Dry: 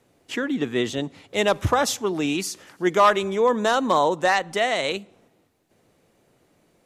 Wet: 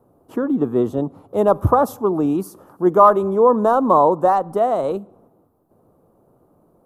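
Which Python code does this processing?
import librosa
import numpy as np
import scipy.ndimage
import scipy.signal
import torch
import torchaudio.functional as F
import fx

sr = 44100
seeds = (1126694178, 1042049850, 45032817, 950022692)

y = fx.curve_eq(x, sr, hz=(1200.0, 2000.0, 7100.0, 12000.0), db=(0, -28, -23, -5))
y = y * librosa.db_to_amplitude(6.0)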